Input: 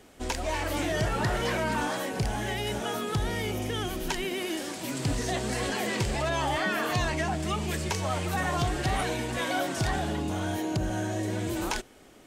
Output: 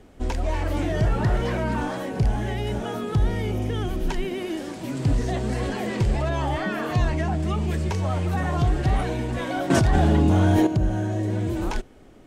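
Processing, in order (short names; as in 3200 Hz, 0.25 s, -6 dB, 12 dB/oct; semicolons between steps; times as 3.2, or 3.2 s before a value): tilt -2.5 dB/oct; 9.7–10.67 fast leveller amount 100%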